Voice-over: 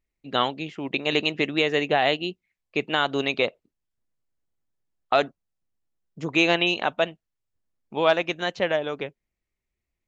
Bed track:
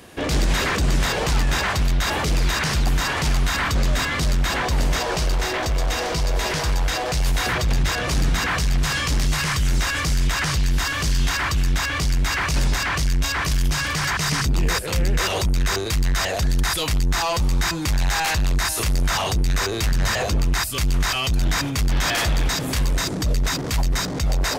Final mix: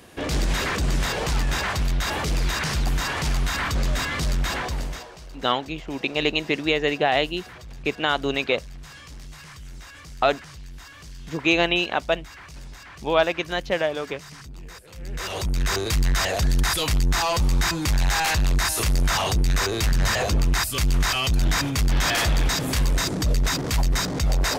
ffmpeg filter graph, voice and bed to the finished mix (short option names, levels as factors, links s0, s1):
-filter_complex "[0:a]adelay=5100,volume=1.06[s0];[1:a]volume=6.68,afade=t=out:st=4.49:d=0.62:silence=0.141254,afade=t=in:st=14.96:d=0.89:silence=0.1[s1];[s0][s1]amix=inputs=2:normalize=0"